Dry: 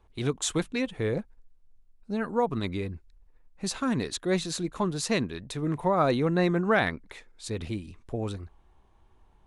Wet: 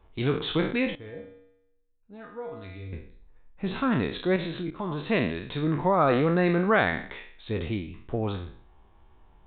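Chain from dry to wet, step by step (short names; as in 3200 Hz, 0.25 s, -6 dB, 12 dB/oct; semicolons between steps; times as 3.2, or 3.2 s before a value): spectral trails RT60 0.52 s; in parallel at -2.5 dB: limiter -18.5 dBFS, peak gain reduction 9.5 dB; 0.95–2.93 on the sum: resonator 95 Hz, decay 0.85 s, harmonics odd, mix 90%; 4.36–5.08 level quantiser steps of 14 dB; downsampling 8000 Hz; gain -2.5 dB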